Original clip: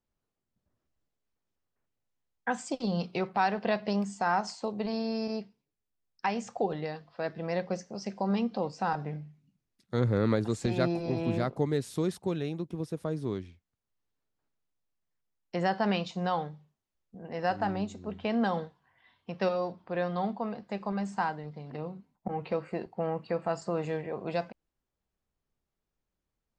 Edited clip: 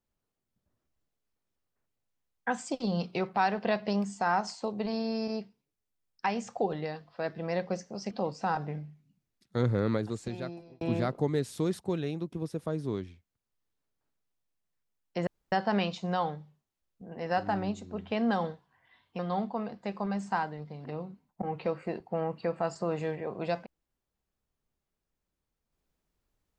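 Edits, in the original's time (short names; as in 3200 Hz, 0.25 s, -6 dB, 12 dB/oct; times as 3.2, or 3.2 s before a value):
8.11–8.49 cut
10–11.19 fade out
15.65 insert room tone 0.25 s
19.32–20.05 cut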